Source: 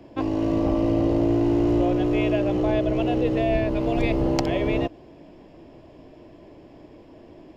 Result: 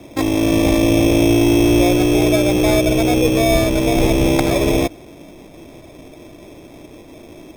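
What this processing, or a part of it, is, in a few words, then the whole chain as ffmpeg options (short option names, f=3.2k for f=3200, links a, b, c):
crushed at another speed: -af "asetrate=22050,aresample=44100,acrusher=samples=30:mix=1:aa=0.000001,asetrate=88200,aresample=44100,volume=7.5dB"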